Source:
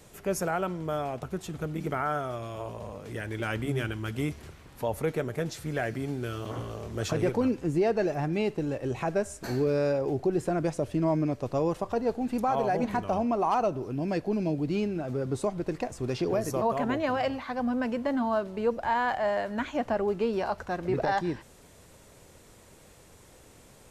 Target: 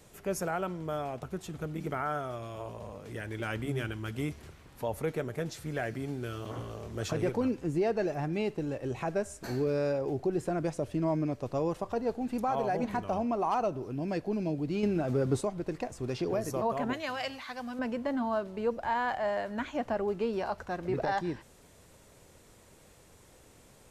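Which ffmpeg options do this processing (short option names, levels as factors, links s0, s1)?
-filter_complex "[0:a]asettb=1/sr,asplit=3[s0][s1][s2];[s0]atrim=end=14.834[s3];[s1]atrim=start=14.83:end=15.41,asetpts=PTS-STARTPTS,afade=t=in:d=0.004:c=qsin,afade=t=out:st=0.576:d=0.004:c=qsin,acontrast=51[s4];[s2]atrim=start=15.406[s5];[s3][s4]acrossfade=d=0.004:c1=hsin:c2=qsin[s6];[s6][s5]acrossfade=d=0.004:c1=qsin:c2=hsin,asettb=1/sr,asplit=3[s7][s8][s9];[s7]atrim=end=16.934[s10];[s8]atrim=start=16.93:end=17.79,asetpts=PTS-STARTPTS,afade=t=in:d=0.004:c=qsin,afade=t=out:st=0.856:d=0.004:c=qsin,tiltshelf=f=1500:g=-8.5[s11];[s9]atrim=start=17.786[s12];[s10][s11]acrossfade=d=0.004:c1=hsin:c2=qsin[s13];[s13][s12]acrossfade=d=0.004:c1=qsin:c2=hsin,volume=0.668"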